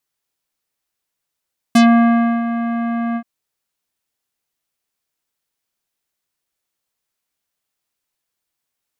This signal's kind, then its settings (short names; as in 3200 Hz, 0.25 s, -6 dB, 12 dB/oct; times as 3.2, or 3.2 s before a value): synth note square A#3 24 dB/oct, low-pass 1900 Hz, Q 0.81, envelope 3 oct, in 0.12 s, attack 6.8 ms, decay 0.67 s, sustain -11.5 dB, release 0.07 s, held 1.41 s